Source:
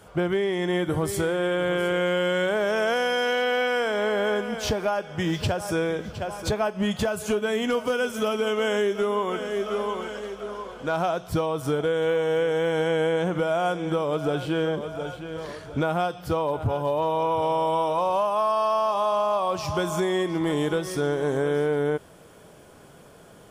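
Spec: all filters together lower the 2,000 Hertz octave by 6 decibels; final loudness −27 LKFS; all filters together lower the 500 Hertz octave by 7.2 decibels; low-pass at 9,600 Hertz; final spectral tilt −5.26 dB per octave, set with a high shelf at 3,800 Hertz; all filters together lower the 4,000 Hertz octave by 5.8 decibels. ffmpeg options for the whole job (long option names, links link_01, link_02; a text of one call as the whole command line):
ffmpeg -i in.wav -af "lowpass=9600,equalizer=frequency=500:width_type=o:gain=-8.5,equalizer=frequency=2000:width_type=o:gain=-8,highshelf=frequency=3800:gain=6,equalizer=frequency=4000:width_type=o:gain=-8,volume=3.5dB" out.wav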